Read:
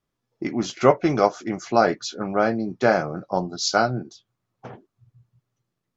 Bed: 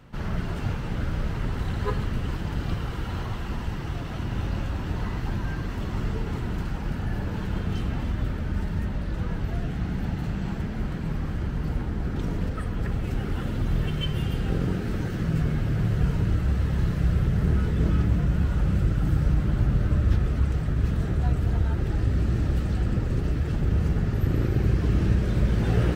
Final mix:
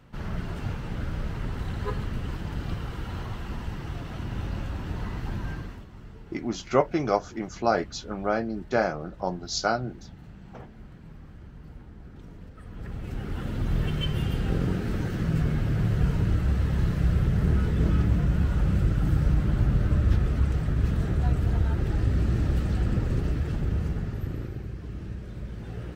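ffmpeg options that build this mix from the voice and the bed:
ffmpeg -i stem1.wav -i stem2.wav -filter_complex "[0:a]adelay=5900,volume=-5.5dB[link_01];[1:a]volume=13dB,afade=type=out:start_time=5.51:duration=0.35:silence=0.211349,afade=type=in:start_time=12.55:duration=1.3:silence=0.149624,afade=type=out:start_time=23.11:duration=1.57:silence=0.199526[link_02];[link_01][link_02]amix=inputs=2:normalize=0" out.wav

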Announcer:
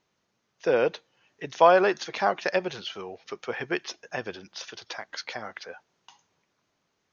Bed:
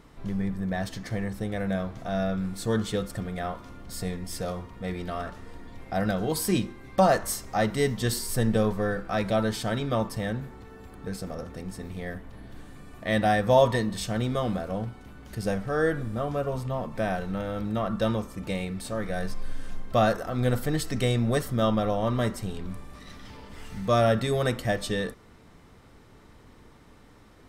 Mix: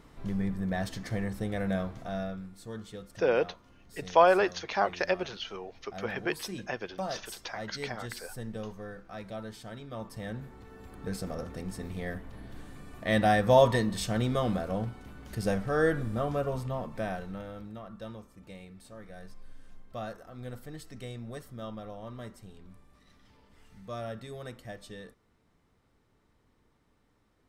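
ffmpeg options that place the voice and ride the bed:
ffmpeg -i stem1.wav -i stem2.wav -filter_complex "[0:a]adelay=2550,volume=-3dB[link_01];[1:a]volume=12dB,afade=type=out:start_time=1.8:duration=0.7:silence=0.223872,afade=type=in:start_time=9.91:duration=1.21:silence=0.199526,afade=type=out:start_time=16.22:duration=1.6:silence=0.16788[link_02];[link_01][link_02]amix=inputs=2:normalize=0" out.wav

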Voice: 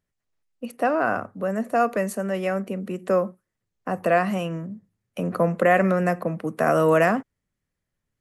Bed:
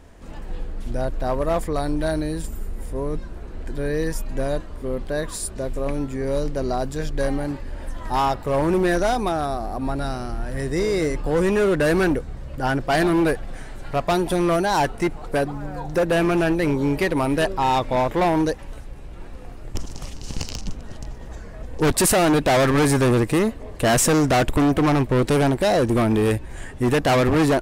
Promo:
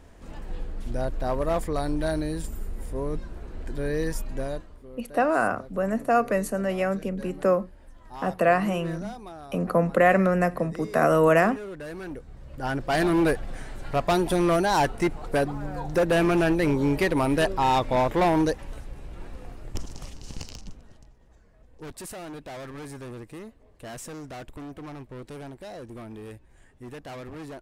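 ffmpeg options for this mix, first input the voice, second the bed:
ffmpeg -i stem1.wav -i stem2.wav -filter_complex "[0:a]adelay=4350,volume=-0.5dB[link_01];[1:a]volume=13dB,afade=type=out:start_time=4.2:duration=0.67:silence=0.177828,afade=type=in:start_time=12.04:duration=1.26:silence=0.149624,afade=type=out:start_time=19.29:duration=1.83:silence=0.105925[link_02];[link_01][link_02]amix=inputs=2:normalize=0" out.wav

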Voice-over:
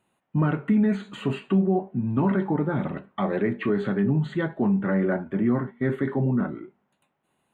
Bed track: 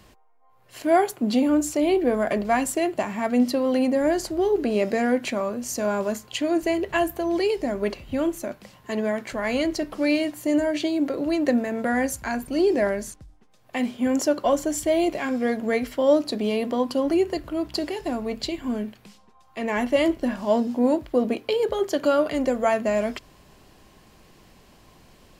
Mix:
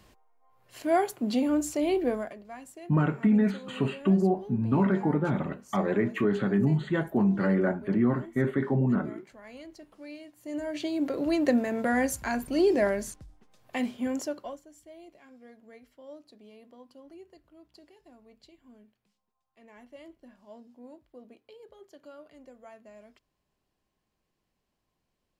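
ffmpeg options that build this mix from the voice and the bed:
ffmpeg -i stem1.wav -i stem2.wav -filter_complex "[0:a]adelay=2550,volume=-1.5dB[link_01];[1:a]volume=14dB,afade=type=out:start_time=2.09:duration=0.25:silence=0.149624,afade=type=in:start_time=10.36:duration=0.92:silence=0.105925,afade=type=out:start_time=13.59:duration=1.02:silence=0.0530884[link_02];[link_01][link_02]amix=inputs=2:normalize=0" out.wav

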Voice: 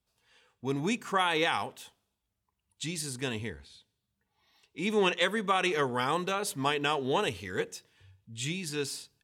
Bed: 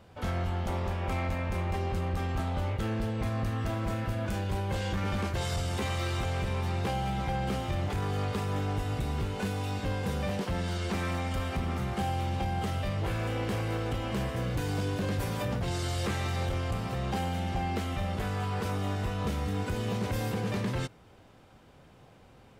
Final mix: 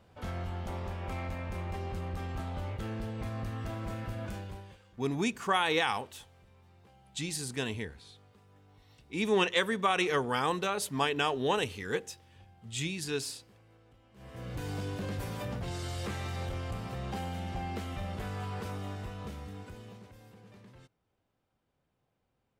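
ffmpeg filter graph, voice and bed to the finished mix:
ffmpeg -i stem1.wav -i stem2.wav -filter_complex "[0:a]adelay=4350,volume=-0.5dB[link_01];[1:a]volume=18dB,afade=type=out:start_time=4.25:duration=0.52:silence=0.0668344,afade=type=in:start_time=14.15:duration=0.51:silence=0.0630957,afade=type=out:start_time=18.48:duration=1.66:silence=0.125893[link_02];[link_01][link_02]amix=inputs=2:normalize=0" out.wav

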